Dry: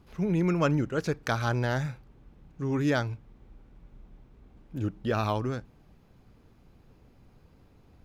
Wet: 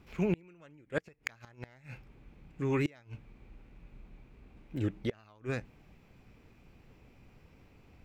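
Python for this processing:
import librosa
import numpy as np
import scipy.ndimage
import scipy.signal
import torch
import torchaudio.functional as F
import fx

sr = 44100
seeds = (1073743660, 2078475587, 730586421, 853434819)

y = fx.peak_eq(x, sr, hz=2100.0, db=12.0, octaves=0.43)
y = fx.gate_flip(y, sr, shuts_db=-18.0, range_db=-30)
y = fx.formant_shift(y, sr, semitones=2)
y = F.gain(torch.from_numpy(y), -1.5).numpy()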